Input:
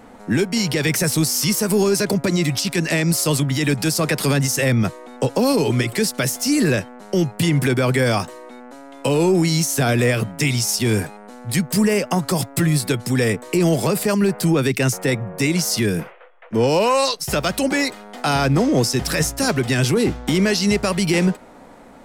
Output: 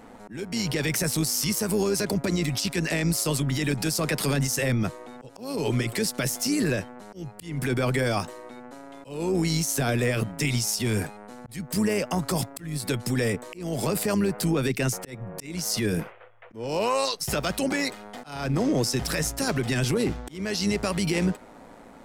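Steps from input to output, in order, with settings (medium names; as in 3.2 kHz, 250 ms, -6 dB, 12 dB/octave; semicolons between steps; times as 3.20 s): peak limiter -13.5 dBFS, peak gain reduction 6.5 dB; slow attack 324 ms; AM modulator 110 Hz, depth 30%; trim -1.5 dB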